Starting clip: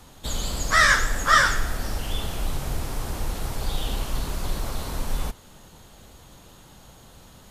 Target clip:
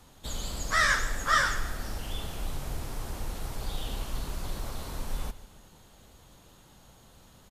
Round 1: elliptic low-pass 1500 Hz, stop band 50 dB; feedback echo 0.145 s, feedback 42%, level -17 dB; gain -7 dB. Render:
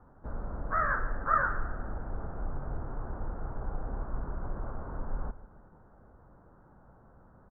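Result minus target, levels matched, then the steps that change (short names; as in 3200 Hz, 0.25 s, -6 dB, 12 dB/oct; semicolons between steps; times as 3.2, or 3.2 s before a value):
2000 Hz band -3.0 dB
remove: elliptic low-pass 1500 Hz, stop band 50 dB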